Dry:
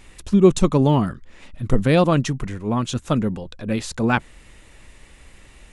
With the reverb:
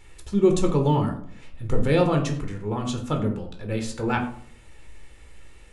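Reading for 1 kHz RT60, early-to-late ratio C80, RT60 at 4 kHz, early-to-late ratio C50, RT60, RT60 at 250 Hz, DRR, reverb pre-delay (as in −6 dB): 0.55 s, 12.5 dB, 0.30 s, 9.0 dB, 0.60 s, 0.70 s, 3.0 dB, 14 ms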